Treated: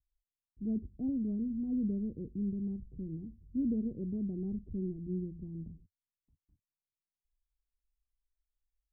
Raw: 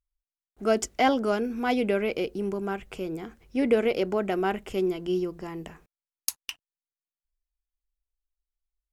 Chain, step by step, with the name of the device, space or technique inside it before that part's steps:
the neighbour's flat through the wall (low-pass filter 230 Hz 24 dB per octave; parametric band 89 Hz +7.5 dB 0.64 octaves)

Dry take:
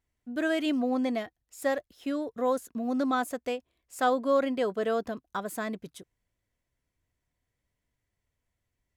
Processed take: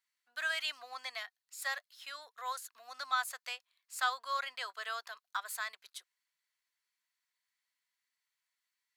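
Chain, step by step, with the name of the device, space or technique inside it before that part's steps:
headphones lying on a table (high-pass filter 1,100 Hz 24 dB per octave; parametric band 4,300 Hz +8 dB 0.3 octaves)

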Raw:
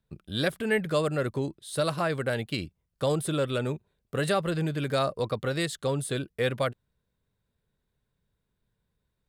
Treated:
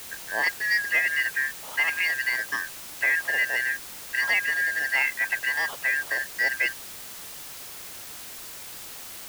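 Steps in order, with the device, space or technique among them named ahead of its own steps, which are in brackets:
split-band scrambled radio (band-splitting scrambler in four parts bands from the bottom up 3142; band-pass filter 320–3,100 Hz; white noise bed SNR 12 dB)
level +3 dB

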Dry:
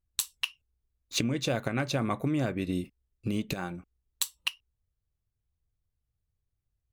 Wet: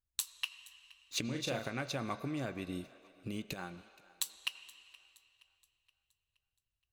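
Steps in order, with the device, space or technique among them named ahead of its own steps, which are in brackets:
low-shelf EQ 490 Hz −5 dB
0:01.24–0:01.70: double-tracking delay 39 ms −5 dB
feedback echo with a high-pass in the loop 472 ms, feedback 47%, high-pass 340 Hz, level −22 dB
filtered reverb send (on a send at −13 dB: high-pass filter 430 Hz 24 dB per octave + low-pass filter 6,000 Hz 12 dB per octave + convolution reverb RT60 2.7 s, pre-delay 76 ms)
on the sum: level −6 dB

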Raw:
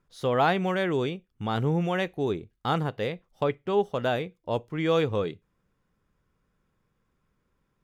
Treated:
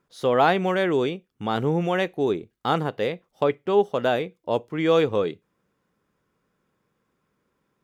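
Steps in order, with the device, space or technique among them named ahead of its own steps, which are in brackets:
filter by subtraction (in parallel: low-pass filter 330 Hz 12 dB per octave + polarity inversion)
on the sum: level +3 dB

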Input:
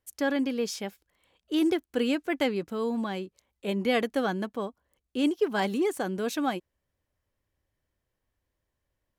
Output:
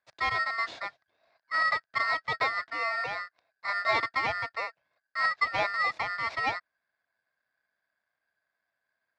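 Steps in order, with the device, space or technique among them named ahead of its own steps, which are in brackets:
ring modulator pedal into a guitar cabinet (ring modulator with a square carrier 1,600 Hz; loudspeaker in its box 89–3,900 Hz, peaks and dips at 180 Hz −9 dB, 260 Hz −3 dB, 390 Hz −4 dB, 670 Hz +10 dB, 1,300 Hz −3 dB, 3,000 Hz −9 dB)

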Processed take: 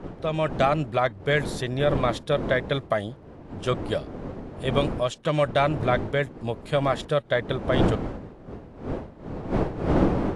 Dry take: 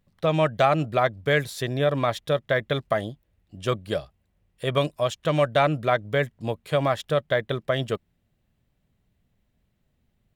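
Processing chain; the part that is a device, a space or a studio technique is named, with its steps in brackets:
smartphone video outdoors (wind on the microphone 390 Hz −27 dBFS; automatic gain control gain up to 5 dB; level −5 dB; AAC 64 kbit/s 24,000 Hz)

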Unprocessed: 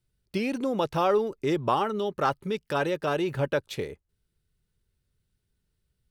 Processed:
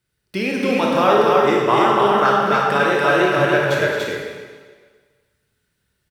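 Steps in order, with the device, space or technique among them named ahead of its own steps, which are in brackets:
stadium PA (high-pass filter 160 Hz 6 dB per octave; parametric band 1,700 Hz +7 dB 1 octave; loudspeakers that aren't time-aligned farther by 74 metres −11 dB, 99 metres −2 dB; convolution reverb RT60 1.6 s, pre-delay 22 ms, DRR −1.5 dB)
level +4.5 dB

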